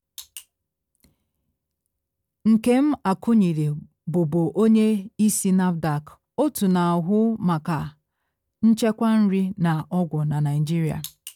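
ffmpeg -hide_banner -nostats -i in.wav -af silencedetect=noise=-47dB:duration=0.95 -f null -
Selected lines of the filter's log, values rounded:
silence_start: 1.06
silence_end: 2.45 | silence_duration: 1.39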